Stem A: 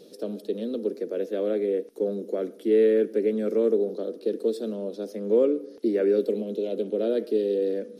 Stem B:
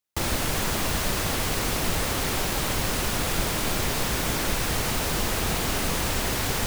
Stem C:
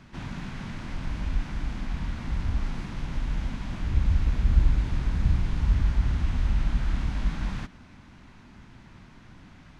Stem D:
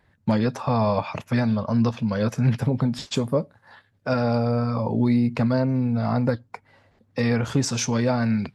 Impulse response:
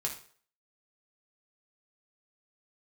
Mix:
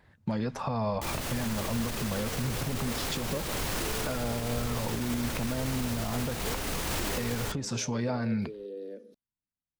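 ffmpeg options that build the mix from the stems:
-filter_complex "[0:a]acompressor=threshold=-25dB:ratio=6,adelay=1150,volume=-10.5dB[link_01];[1:a]alimiter=limit=-22.5dB:level=0:latency=1:release=26,adelay=850,volume=2dB[link_02];[2:a]volume=-15dB[link_03];[3:a]acompressor=threshold=-26dB:ratio=3,volume=1.5dB,asplit=2[link_04][link_05];[link_05]apad=whole_len=432073[link_06];[link_03][link_06]sidechaingate=range=-36dB:threshold=-54dB:ratio=16:detection=peak[link_07];[link_01][link_02][link_07][link_04]amix=inputs=4:normalize=0,alimiter=limit=-21.5dB:level=0:latency=1:release=345"

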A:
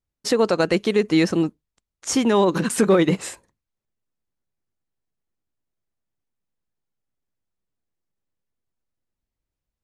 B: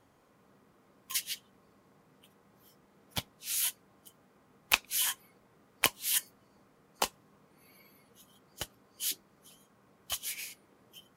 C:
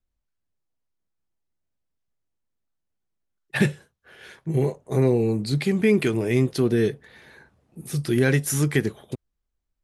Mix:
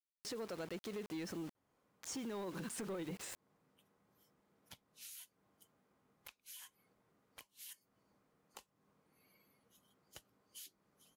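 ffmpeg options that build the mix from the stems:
ffmpeg -i stem1.wav -i stem2.wav -filter_complex "[0:a]acrusher=bits=5:mix=0:aa=0.000001,acompressor=threshold=-22dB:ratio=4,volume=0.5dB[link_01];[1:a]acompressor=threshold=-38dB:ratio=12,asoftclip=type=tanh:threshold=-22dB,adelay=1550,volume=-12dB[link_02];[link_01][link_02]amix=inputs=2:normalize=0,asoftclip=type=hard:threshold=-20dB,acompressor=threshold=-40dB:ratio=2,volume=0dB,alimiter=level_in=14.5dB:limit=-24dB:level=0:latency=1:release=71,volume=-14.5dB" out.wav

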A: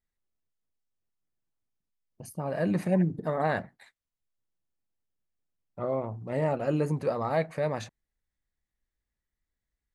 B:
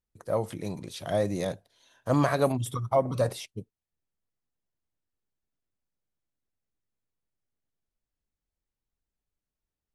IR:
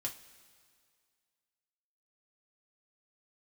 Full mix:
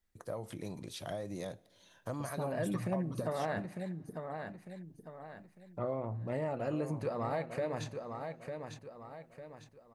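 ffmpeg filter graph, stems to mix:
-filter_complex "[0:a]acompressor=threshold=-28dB:ratio=3,volume=2dB,asplit=3[link_01][link_02][link_03];[link_02]volume=-9.5dB[link_04];[link_03]volume=-7.5dB[link_05];[1:a]acompressor=threshold=-29dB:ratio=6,volume=-2.5dB,asplit=2[link_06][link_07];[link_07]volume=-14.5dB[link_08];[2:a]atrim=start_sample=2205[link_09];[link_04][link_08]amix=inputs=2:normalize=0[link_10];[link_10][link_09]afir=irnorm=-1:irlink=0[link_11];[link_05]aecho=0:1:901|1802|2703|3604:1|0.28|0.0784|0.022[link_12];[link_01][link_06][link_11][link_12]amix=inputs=4:normalize=0,acompressor=threshold=-46dB:ratio=1.5"

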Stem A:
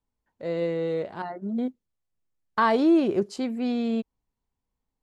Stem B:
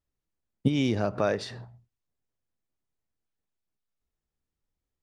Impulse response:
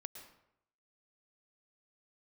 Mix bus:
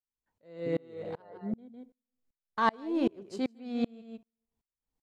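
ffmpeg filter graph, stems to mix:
-filter_complex "[0:a]asoftclip=type=tanh:threshold=-12dB,volume=-0.5dB,asplit=3[link_01][link_02][link_03];[link_02]volume=-13dB[link_04];[link_03]volume=-8dB[link_05];[1:a]lowpass=frequency=490:width_type=q:width=4.9,volume=-14.5dB[link_06];[2:a]atrim=start_sample=2205[link_07];[link_04][link_07]afir=irnorm=-1:irlink=0[link_08];[link_05]aecho=0:1:155:1[link_09];[link_01][link_06][link_08][link_09]amix=inputs=4:normalize=0,aeval=exprs='val(0)*pow(10,-33*if(lt(mod(-2.6*n/s,1),2*abs(-2.6)/1000),1-mod(-2.6*n/s,1)/(2*abs(-2.6)/1000),(mod(-2.6*n/s,1)-2*abs(-2.6)/1000)/(1-2*abs(-2.6)/1000))/20)':channel_layout=same"

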